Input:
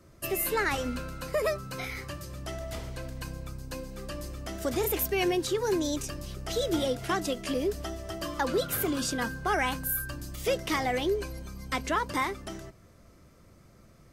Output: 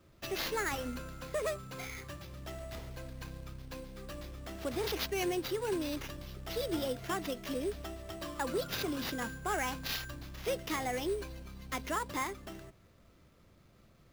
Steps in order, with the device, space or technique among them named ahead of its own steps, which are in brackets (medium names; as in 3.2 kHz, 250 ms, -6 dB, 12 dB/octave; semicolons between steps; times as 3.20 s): early companding sampler (sample-rate reducer 8.6 kHz, jitter 0%; companded quantiser 6-bit); trim -6.5 dB